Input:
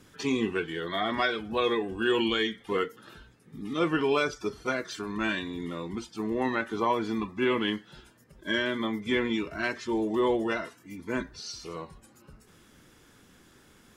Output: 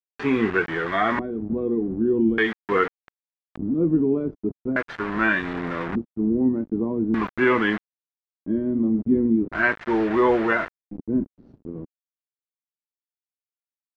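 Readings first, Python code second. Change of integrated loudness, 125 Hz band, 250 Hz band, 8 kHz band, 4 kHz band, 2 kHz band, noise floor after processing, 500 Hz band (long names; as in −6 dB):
+6.5 dB, +8.0 dB, +8.5 dB, below −10 dB, −7.0 dB, +6.5 dB, below −85 dBFS, +4.5 dB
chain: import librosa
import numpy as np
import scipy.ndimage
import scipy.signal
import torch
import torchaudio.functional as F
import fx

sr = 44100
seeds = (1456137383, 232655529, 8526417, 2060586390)

y = fx.quant_dither(x, sr, seeds[0], bits=6, dither='none')
y = fx.filter_lfo_lowpass(y, sr, shape='square', hz=0.42, low_hz=270.0, high_hz=1700.0, q=1.9)
y = y * 10.0 ** (6.0 / 20.0)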